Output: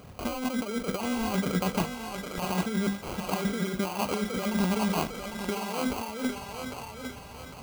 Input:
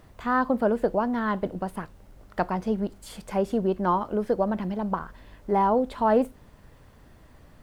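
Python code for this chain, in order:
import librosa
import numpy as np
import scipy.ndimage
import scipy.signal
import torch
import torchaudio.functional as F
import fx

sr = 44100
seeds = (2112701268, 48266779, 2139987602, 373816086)

y = scipy.signal.sosfilt(scipy.signal.butter(2, 61.0, 'highpass', fs=sr, output='sos'), x)
y = fx.hum_notches(y, sr, base_hz=50, count=5)
y = fx.over_compress(y, sr, threshold_db=-32.0, ratio=-1.0)
y = fx.notch_comb(y, sr, f0_hz=330.0)
y = fx.sample_hold(y, sr, seeds[0], rate_hz=1800.0, jitter_pct=0)
y = fx.echo_thinned(y, sr, ms=803, feedback_pct=47, hz=440.0, wet_db=-4)
y = F.gain(torch.from_numpy(y), 2.5).numpy()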